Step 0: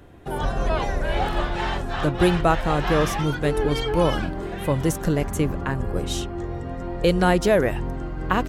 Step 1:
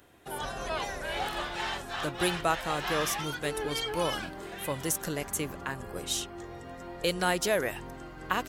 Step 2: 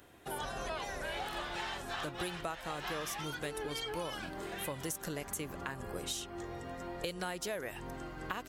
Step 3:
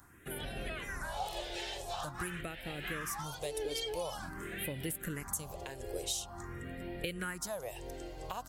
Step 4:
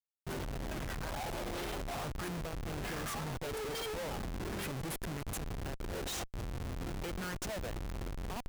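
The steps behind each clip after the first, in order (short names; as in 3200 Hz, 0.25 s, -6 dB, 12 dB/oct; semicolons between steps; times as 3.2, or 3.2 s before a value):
tilt +3 dB/oct; gain -7 dB
compressor 6:1, threshold -36 dBFS, peak gain reduction 14 dB
phaser stages 4, 0.47 Hz, lowest notch 190–1100 Hz; gain +3 dB
Schmitt trigger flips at -39.5 dBFS; gain +2 dB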